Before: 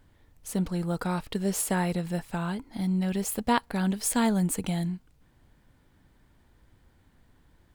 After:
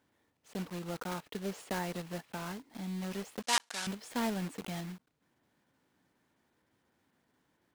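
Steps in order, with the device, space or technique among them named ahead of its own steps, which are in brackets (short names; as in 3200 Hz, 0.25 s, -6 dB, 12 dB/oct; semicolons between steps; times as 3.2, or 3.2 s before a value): early digital voice recorder (BPF 210–3600 Hz; block floating point 3-bit); 3.42–3.87 weighting filter ITU-R 468; gain -7.5 dB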